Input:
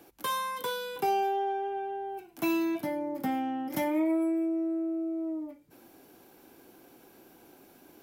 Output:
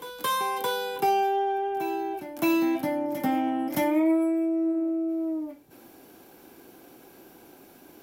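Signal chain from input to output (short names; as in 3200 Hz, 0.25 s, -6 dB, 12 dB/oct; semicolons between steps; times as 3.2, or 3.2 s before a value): reverse echo 0.619 s -11.5 dB; gain +4.5 dB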